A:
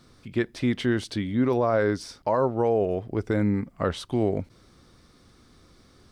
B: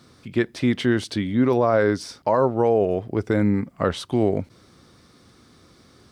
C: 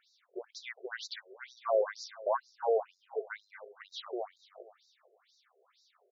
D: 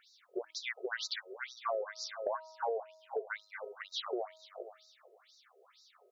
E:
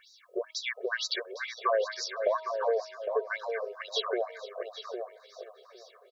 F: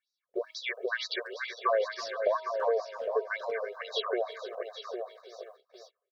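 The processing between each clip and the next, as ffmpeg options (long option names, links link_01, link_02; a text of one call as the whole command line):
ffmpeg -i in.wav -af "highpass=83,volume=4dB" out.wav
ffmpeg -i in.wav -filter_complex "[0:a]asplit=2[link_01][link_02];[link_02]aecho=0:1:227|454|681|908:0.251|0.0955|0.0363|0.0138[link_03];[link_01][link_03]amix=inputs=2:normalize=0,afftfilt=real='re*between(b*sr/1024,490*pow(5300/490,0.5+0.5*sin(2*PI*2.1*pts/sr))/1.41,490*pow(5300/490,0.5+0.5*sin(2*PI*2.1*pts/sr))*1.41)':imag='im*between(b*sr/1024,490*pow(5300/490,0.5+0.5*sin(2*PI*2.1*pts/sr))/1.41,490*pow(5300/490,0.5+0.5*sin(2*PI*2.1*pts/sr))*1.41)':win_size=1024:overlap=0.75,volume=-7dB" out.wav
ffmpeg -i in.wav -af "bandreject=frequency=317.2:width_type=h:width=4,bandreject=frequency=634.4:width_type=h:width=4,bandreject=frequency=951.6:width_type=h:width=4,bandreject=frequency=1268.8:width_type=h:width=4,acompressor=threshold=-38dB:ratio=8,volume=5.5dB" out.wav
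ffmpeg -i in.wav -filter_complex "[0:a]aecho=1:1:1.8:0.8,asplit=2[link_01][link_02];[link_02]adelay=808,lowpass=frequency=2200:poles=1,volume=-6.5dB,asplit=2[link_03][link_04];[link_04]adelay=808,lowpass=frequency=2200:poles=1,volume=0.16,asplit=2[link_05][link_06];[link_06]adelay=808,lowpass=frequency=2200:poles=1,volume=0.16[link_07];[link_03][link_05][link_07]amix=inputs=3:normalize=0[link_08];[link_01][link_08]amix=inputs=2:normalize=0,volume=4dB" out.wav
ffmpeg -i in.wav -filter_complex "[0:a]acrossover=split=4700[link_01][link_02];[link_02]acompressor=threshold=-55dB:ratio=4:attack=1:release=60[link_03];[link_01][link_03]amix=inputs=2:normalize=0,asplit=2[link_04][link_05];[link_05]adelay=330,highpass=300,lowpass=3400,asoftclip=type=hard:threshold=-22.5dB,volume=-13dB[link_06];[link_04][link_06]amix=inputs=2:normalize=0,agate=range=-29dB:threshold=-51dB:ratio=16:detection=peak" out.wav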